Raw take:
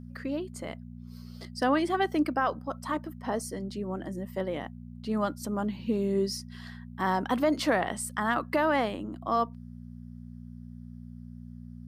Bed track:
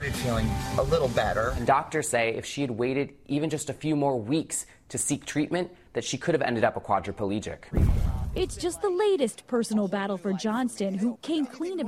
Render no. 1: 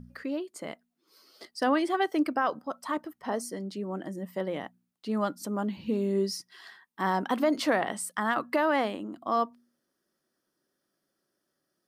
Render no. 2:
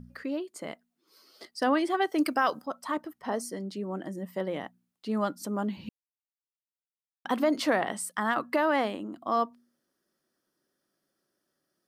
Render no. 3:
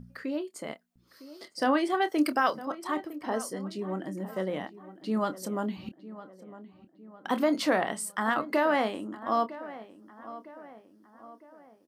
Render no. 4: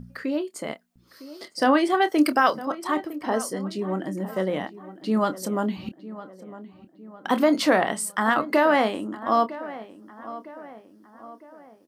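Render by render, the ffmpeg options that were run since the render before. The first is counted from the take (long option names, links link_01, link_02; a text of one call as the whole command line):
ffmpeg -i in.wav -af "bandreject=frequency=60:width_type=h:width=4,bandreject=frequency=120:width_type=h:width=4,bandreject=frequency=180:width_type=h:width=4,bandreject=frequency=240:width_type=h:width=4" out.wav
ffmpeg -i in.wav -filter_complex "[0:a]asettb=1/sr,asplit=3[link_01][link_02][link_03];[link_01]atrim=end=2.184[link_04];[link_02]atrim=start=2.18:end=2.66,asetpts=PTS-STARTPTS,afade=type=in:duration=0.004:curve=qsin,afade=type=out:start_time=0.476:duration=0.004:curve=qsin,equalizer=frequency=12000:width_type=o:width=2.8:gain=13.5[link_05];[link_03]atrim=start=2.656[link_06];[link_04][link_05]acrossfade=duration=0.004:curve1=hsin:curve2=qsin[link_07];[link_07][link_06]acrossfade=duration=0.004:curve1=qsin:curve2=hsin,asplit=3[link_08][link_09][link_10];[link_08]atrim=end=5.89,asetpts=PTS-STARTPTS,afade=type=out:start_time=5.886:duration=0.004:curve=hsin[link_11];[link_09]atrim=start=5.89:end=7.25,asetpts=PTS-STARTPTS,volume=0[link_12];[link_10]atrim=start=7.25,asetpts=PTS-STARTPTS,afade=type=in:duration=0.004:curve=hsin[link_13];[link_11][link_12][link_13]concat=n=3:v=0:a=1" out.wav
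ffmpeg -i in.wav -filter_complex "[0:a]asplit=2[link_01][link_02];[link_02]adelay=27,volume=-11dB[link_03];[link_01][link_03]amix=inputs=2:normalize=0,asplit=2[link_04][link_05];[link_05]adelay=957,lowpass=frequency=2000:poles=1,volume=-15.5dB,asplit=2[link_06][link_07];[link_07]adelay=957,lowpass=frequency=2000:poles=1,volume=0.5,asplit=2[link_08][link_09];[link_09]adelay=957,lowpass=frequency=2000:poles=1,volume=0.5,asplit=2[link_10][link_11];[link_11]adelay=957,lowpass=frequency=2000:poles=1,volume=0.5,asplit=2[link_12][link_13];[link_13]adelay=957,lowpass=frequency=2000:poles=1,volume=0.5[link_14];[link_04][link_06][link_08][link_10][link_12][link_14]amix=inputs=6:normalize=0" out.wav
ffmpeg -i in.wav -af "volume=6dB" out.wav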